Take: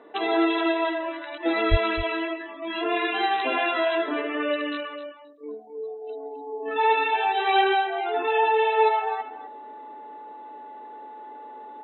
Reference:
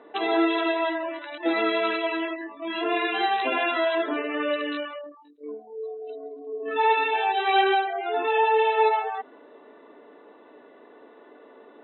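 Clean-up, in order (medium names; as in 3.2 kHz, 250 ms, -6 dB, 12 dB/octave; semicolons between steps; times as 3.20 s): band-stop 860 Hz, Q 30; de-plosive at 1.70 s; inverse comb 260 ms -12.5 dB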